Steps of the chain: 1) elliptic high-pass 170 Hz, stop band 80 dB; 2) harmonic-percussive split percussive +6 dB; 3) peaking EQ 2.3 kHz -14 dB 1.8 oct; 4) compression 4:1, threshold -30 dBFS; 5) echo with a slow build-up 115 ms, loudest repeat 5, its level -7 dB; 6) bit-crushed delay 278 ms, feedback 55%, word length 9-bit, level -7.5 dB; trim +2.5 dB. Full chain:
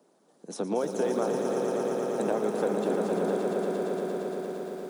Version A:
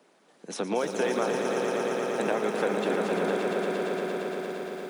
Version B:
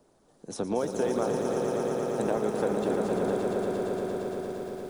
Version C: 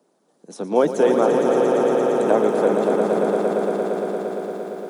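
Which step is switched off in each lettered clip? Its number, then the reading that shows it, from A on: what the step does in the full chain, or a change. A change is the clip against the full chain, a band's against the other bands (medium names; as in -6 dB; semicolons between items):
3, 2 kHz band +8.0 dB; 1, 125 Hz band +2.5 dB; 4, mean gain reduction 5.5 dB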